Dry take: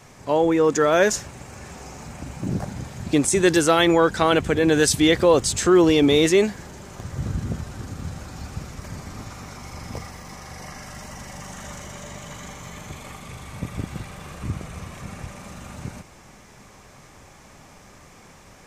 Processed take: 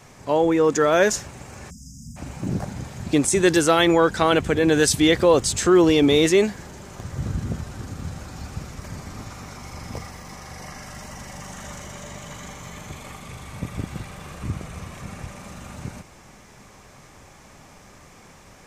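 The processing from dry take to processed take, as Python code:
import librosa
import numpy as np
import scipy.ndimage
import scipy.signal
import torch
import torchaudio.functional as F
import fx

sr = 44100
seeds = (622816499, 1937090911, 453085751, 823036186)

y = fx.spec_erase(x, sr, start_s=1.7, length_s=0.47, low_hz=270.0, high_hz=4800.0)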